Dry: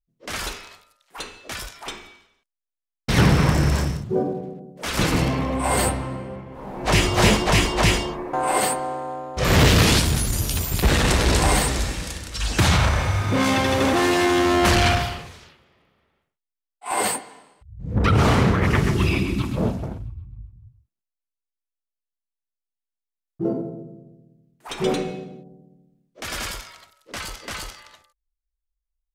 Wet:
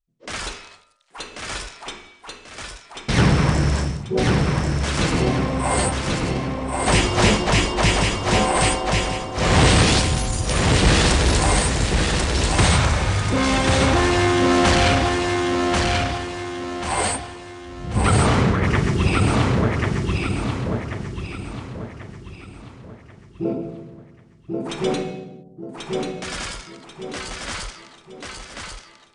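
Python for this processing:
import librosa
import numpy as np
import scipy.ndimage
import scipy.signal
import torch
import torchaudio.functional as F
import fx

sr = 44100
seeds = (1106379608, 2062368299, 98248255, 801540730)

y = scipy.signal.sosfilt(scipy.signal.butter(16, 9900.0, 'lowpass', fs=sr, output='sos'), x)
y = fx.echo_feedback(y, sr, ms=1088, feedback_pct=39, wet_db=-3.0)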